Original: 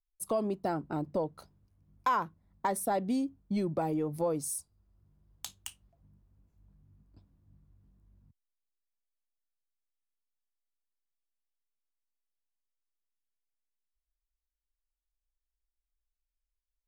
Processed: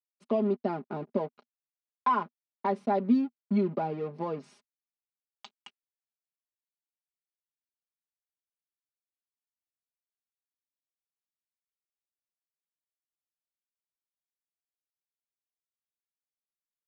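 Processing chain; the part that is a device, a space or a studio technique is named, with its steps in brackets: blown loudspeaker (crossover distortion -46.5 dBFS; cabinet simulation 170–3900 Hz, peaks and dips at 240 Hz +9 dB, 400 Hz +3 dB, 1.7 kHz -5 dB, 3.4 kHz -5 dB); comb 4.9 ms, depth 69%

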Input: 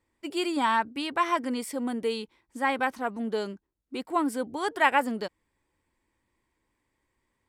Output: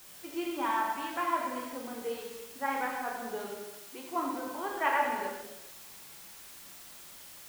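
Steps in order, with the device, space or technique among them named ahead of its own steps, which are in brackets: wax cylinder (band-pass 320–2300 Hz; wow and flutter; white noise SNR 14 dB); 3.50–4.16 s: high-pass 200 Hz 6 dB/octave; gated-style reverb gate 460 ms falling, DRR -2.5 dB; trim -8.5 dB

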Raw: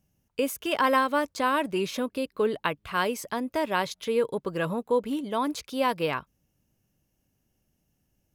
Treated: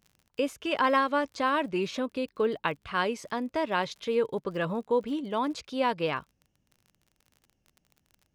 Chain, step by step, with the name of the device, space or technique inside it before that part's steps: lo-fi chain (low-pass 5.7 kHz 12 dB/octave; wow and flutter; crackle 39 per s -42 dBFS); trim -1.5 dB

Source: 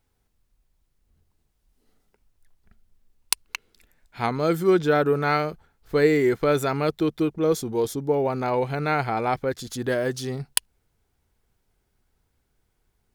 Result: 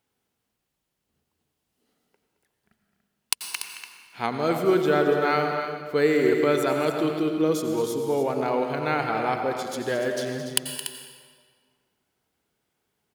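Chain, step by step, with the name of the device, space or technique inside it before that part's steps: stadium PA (high-pass 170 Hz 12 dB/octave; peaking EQ 3 kHz +4 dB 0.37 oct; loudspeakers at several distances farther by 75 m -12 dB, 99 m -10 dB; reverberation RT60 1.8 s, pre-delay 82 ms, DRR 5.5 dB); trim -2 dB

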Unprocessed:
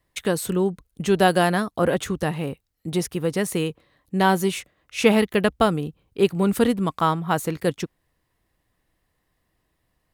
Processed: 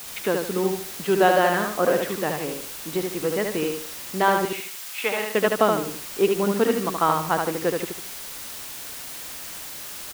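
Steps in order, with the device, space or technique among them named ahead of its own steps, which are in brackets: wax cylinder (band-pass 280–2700 Hz; wow and flutter; white noise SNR 12 dB); 4.45–5.35 s: high-pass 1.3 kHz 6 dB/octave; feedback delay 75 ms, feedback 33%, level -4 dB

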